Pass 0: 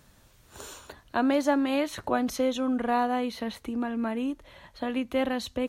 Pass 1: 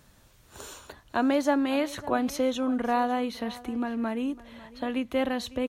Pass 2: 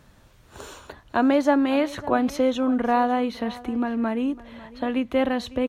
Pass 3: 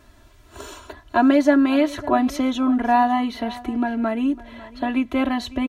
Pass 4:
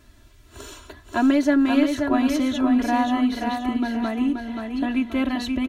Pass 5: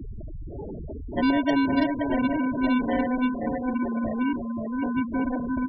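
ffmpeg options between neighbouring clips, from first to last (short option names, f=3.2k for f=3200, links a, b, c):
-af "aecho=1:1:552:0.112"
-af "highshelf=f=4.6k:g=-10,volume=5dB"
-af "aecho=1:1:3:1"
-filter_complex "[0:a]equalizer=f=810:w=0.74:g=-7,asplit=2[a][b];[b]aeval=exprs='clip(val(0),-1,0.1)':c=same,volume=-11dB[c];[a][c]amix=inputs=2:normalize=0,aecho=1:1:529|1058|1587|2116|2645:0.562|0.208|0.077|0.0285|0.0105,volume=-2dB"
-af "aeval=exprs='val(0)+0.5*0.0708*sgn(val(0))':c=same,acrusher=samples=35:mix=1:aa=0.000001,afftfilt=real='re*gte(hypot(re,im),0.141)':imag='im*gte(hypot(re,im),0.141)':win_size=1024:overlap=0.75,volume=-5.5dB"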